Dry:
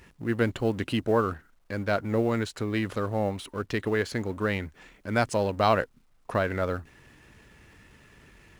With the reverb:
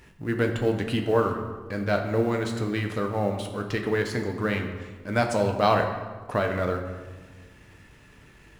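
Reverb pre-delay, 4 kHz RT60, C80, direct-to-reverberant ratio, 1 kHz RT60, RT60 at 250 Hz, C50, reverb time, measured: 7 ms, 0.95 s, 8.5 dB, 3.5 dB, 1.3 s, 1.8 s, 7.0 dB, 1.4 s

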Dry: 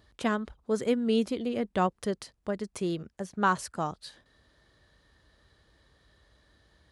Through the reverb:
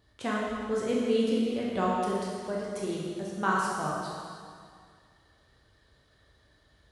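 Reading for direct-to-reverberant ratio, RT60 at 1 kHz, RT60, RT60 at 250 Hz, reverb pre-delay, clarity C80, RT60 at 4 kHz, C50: -5.0 dB, 2.1 s, 2.1 s, 2.1 s, 6 ms, 0.0 dB, 2.0 s, -1.5 dB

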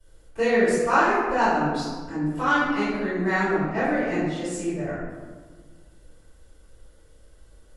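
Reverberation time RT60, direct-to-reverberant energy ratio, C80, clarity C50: 1.6 s, -20.0 dB, 0.5 dB, -1.5 dB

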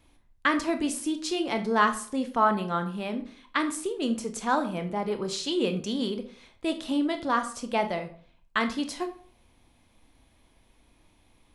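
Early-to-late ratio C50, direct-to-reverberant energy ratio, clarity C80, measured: 12.0 dB, 7.0 dB, 15.5 dB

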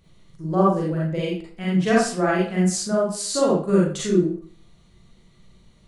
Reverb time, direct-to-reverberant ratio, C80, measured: 0.50 s, -6.0 dB, 6.5 dB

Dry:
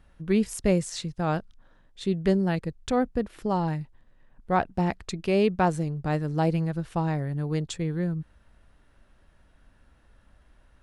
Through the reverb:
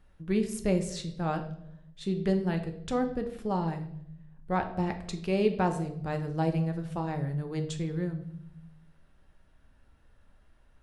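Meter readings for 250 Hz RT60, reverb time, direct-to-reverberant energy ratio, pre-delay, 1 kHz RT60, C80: 1.1 s, 0.75 s, 5.5 dB, 5 ms, 0.60 s, 14.0 dB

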